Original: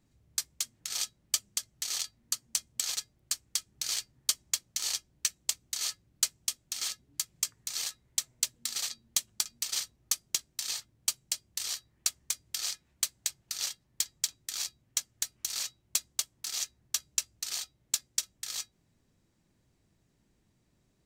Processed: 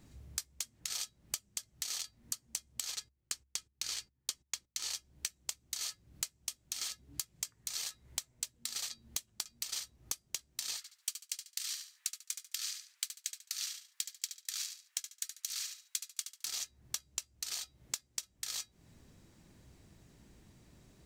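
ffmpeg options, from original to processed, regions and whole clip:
-filter_complex "[0:a]asettb=1/sr,asplit=3[a][b][c];[a]atrim=end=2.914[d];[b]atrim=start=2.91:end=4.91,asetpts=PTS-STARTPTS,afade=t=in:d=0.004:c=qsin,afade=t=out:st=1.996:d=0.004:c=qsin,agate=range=-22dB:threshold=-59dB:ratio=16:release=100:detection=peak,highshelf=f=9.7k:g=-8,bandreject=f=660:w=5.5[e];[c]atrim=start=4.906[f];[d][e]acrossfade=d=0.004:c1=hsin:c2=qsin[g];[g][f]acrossfade=d=0.004:c1=qsin:c2=hsin,asettb=1/sr,asplit=3[h][i][j];[h]atrim=end=10.774[k];[i]atrim=start=10.77:end=16.45,asetpts=PTS-STARTPTS,afade=t=in:d=0.004:c=qsin,afade=t=out:st=5.676:d=0.004:c=qsin,highpass=f=1.3k:w=0.5412,highpass=f=1.3k:w=1.3066,aecho=1:1:71|142|213:0.355|0.0674|0.0128,atrim=end_sample=250488[l];[j]atrim=start=16.446[m];[k][l]acrossfade=d=0.004:c1=hsin:c2=qsin[n];[n][m]acrossfade=d=0.004:c1=qsin:c2=hsin,equalizer=f=66:w=7.7:g=8,acompressor=threshold=-47dB:ratio=8,volume=10.5dB"

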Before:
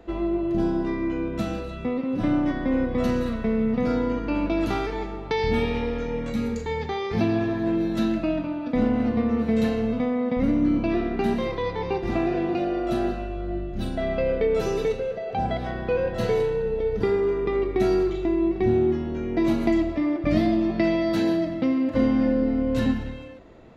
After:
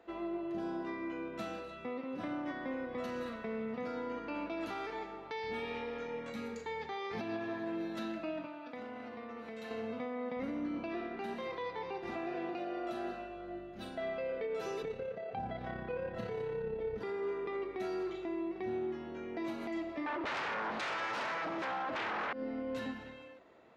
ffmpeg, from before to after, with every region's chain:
-filter_complex "[0:a]asettb=1/sr,asplit=3[a][b][c];[a]atrim=end=8.464[d];[b]atrim=start=8.46:end=9.71,asetpts=PTS-STARTPTS,afade=t=in:d=0.004:c=qsin,afade=t=out:st=1.246:d=0.004:c=qsin,lowshelf=f=450:g=-7.5,acompressor=threshold=-29dB:ratio=3:attack=3.2:release=140:knee=1:detection=peak[e];[c]atrim=start=9.706[f];[d][e]acrossfade=d=0.004:c1=hsin:c2=qsin[g];[g][f]acrossfade=d=0.004:c1=qsin:c2=hsin,asettb=1/sr,asplit=3[h][i][j];[h]atrim=end=14.824[k];[i]atrim=start=14.82:end=16.98,asetpts=PTS-STARTPTS,afade=t=in:d=0.004:c=qsin,afade=t=out:st=2.156:d=0.004:c=qsin,bass=f=250:g=13,treble=f=4k:g=-7,tremolo=f=34:d=0.4[l];[j]atrim=start=16.976[m];[k][l]acrossfade=d=0.004:c1=hsin:c2=qsin[n];[n][m]acrossfade=d=0.004:c1=qsin:c2=hsin,asettb=1/sr,asplit=3[o][p][q];[o]atrim=end=20.064[r];[p]atrim=start=20.06:end=22.33,asetpts=PTS-STARTPTS,afade=t=in:d=0.004:c=qsin,afade=t=out:st=2.266:d=0.004:c=qsin,aemphasis=mode=reproduction:type=50fm,aeval=exprs='0.355*sin(PI/2*7.94*val(0)/0.355)':c=same,aecho=1:1:455:0.211,atrim=end_sample=100107[s];[q]atrim=start=22.326[t];[r][s]acrossfade=d=0.004:c1=hsin:c2=qsin[u];[u][t]acrossfade=d=0.004:c1=qsin:c2=hsin,highpass=f=1.3k:p=1,highshelf=f=2.6k:g=-11,alimiter=level_in=4.5dB:limit=-24dB:level=0:latency=1:release=134,volume=-4.5dB,volume=-1.5dB"

